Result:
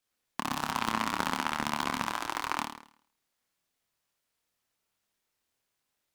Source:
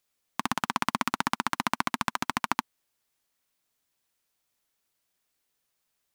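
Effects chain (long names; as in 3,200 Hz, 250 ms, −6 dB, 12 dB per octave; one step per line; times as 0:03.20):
0:02.07–0:02.59: elliptic high-pass filter 300 Hz
flutter between parallel walls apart 4.6 metres, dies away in 0.57 s
short delay modulated by noise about 1,600 Hz, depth 0.047 ms
level −5 dB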